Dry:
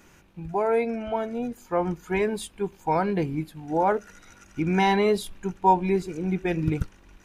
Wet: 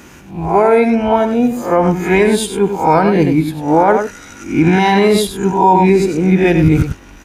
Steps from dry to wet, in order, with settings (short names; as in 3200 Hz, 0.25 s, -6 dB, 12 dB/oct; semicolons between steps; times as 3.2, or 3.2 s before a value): spectral swells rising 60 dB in 0.41 s; HPF 47 Hz; bell 260 Hz +5.5 dB 0.39 oct; echo 96 ms -9 dB; maximiser +14.5 dB; gain -1 dB